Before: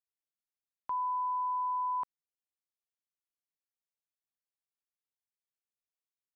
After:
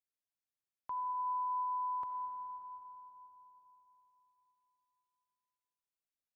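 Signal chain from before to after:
parametric band 100 Hz +6.5 dB 0.63 octaves
on a send: convolution reverb RT60 3.9 s, pre-delay 30 ms, DRR 3.5 dB
on the sum: level −5.5 dB

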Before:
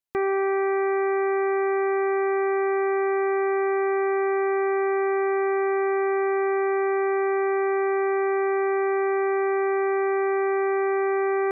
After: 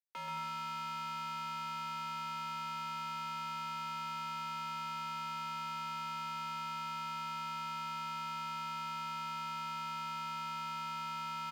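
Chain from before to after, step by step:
low shelf with overshoot 560 Hz −10.5 dB, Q 1.5
brickwall limiter −29.5 dBFS, peak gain reduction 11.5 dB
mid-hump overdrive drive 24 dB, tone 1,300 Hz, clips at −29.5 dBFS
frequency shifter +160 Hz
log-companded quantiser 6 bits
hard clipping −39.5 dBFS, distortion −10 dB
bouncing-ball delay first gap 130 ms, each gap 0.7×, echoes 5
level −1 dB

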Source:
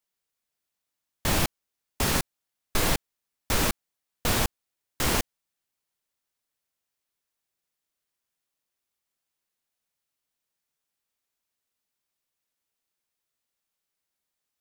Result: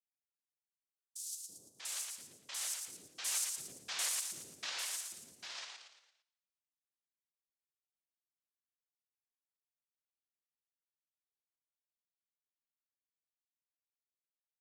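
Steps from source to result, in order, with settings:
source passing by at 0:03.65, 27 m/s, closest 13 metres
tuned comb filter 280 Hz, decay 1 s, mix 60%
on a send: repeating echo 114 ms, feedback 43%, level −4.5 dB
on the sum: cochlear-implant simulation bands 1
high-shelf EQ 5,900 Hz +9 dB
speech leveller 2 s
spectral tilt +2 dB per octave
three-band delay without the direct sound highs, lows, mids 330/640 ms, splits 450/5,100 Hz
level −7 dB

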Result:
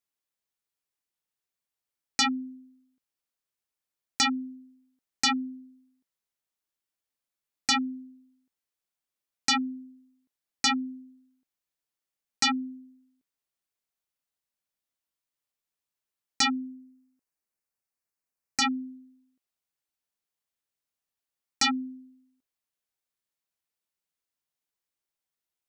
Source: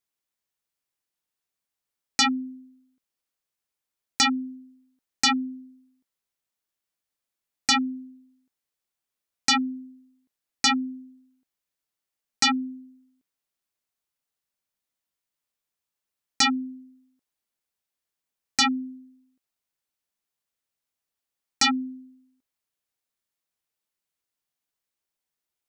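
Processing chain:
0:16.58–0:18.62: parametric band 3,400 Hz −13.5 dB 0.37 octaves
level −3.5 dB

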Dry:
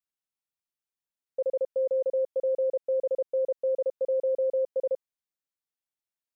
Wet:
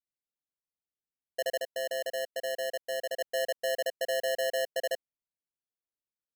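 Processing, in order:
adaptive Wiener filter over 25 samples
0:01.59–0:03.21: low-shelf EQ 340 Hz −11 dB
decimation without filtering 37×
level −3 dB

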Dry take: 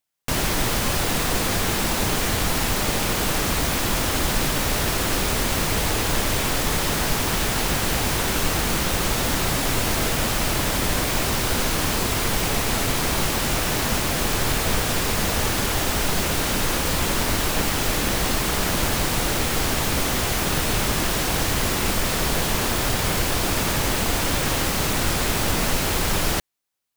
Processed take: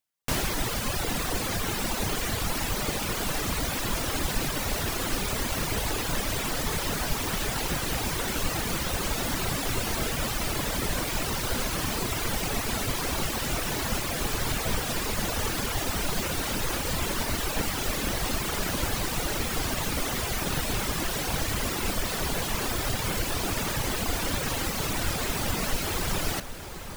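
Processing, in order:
reverb reduction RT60 1.5 s
delay that swaps between a low-pass and a high-pass 764 ms, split 1,700 Hz, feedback 75%, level −11 dB
level −3.5 dB

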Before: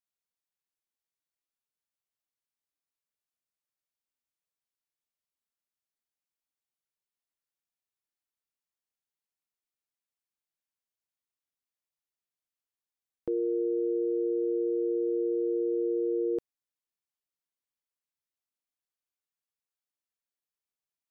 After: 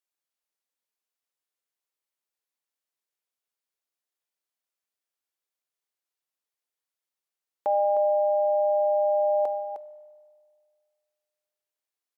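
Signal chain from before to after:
Chebyshev high-pass filter 230 Hz, order 2
on a send: single-tap delay 533 ms −9 dB
on the sum: spring reverb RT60 3.3 s, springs 43 ms, chirp 45 ms, DRR 14.5 dB
wrong playback speed 45 rpm record played at 78 rpm
level +5.5 dB

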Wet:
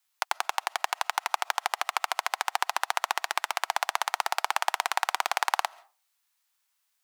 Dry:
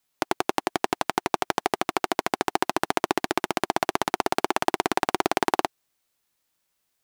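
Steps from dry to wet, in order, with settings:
high-pass filter 820 Hz 24 dB per octave
on a send: convolution reverb RT60 0.35 s, pre-delay 95 ms, DRR 24 dB

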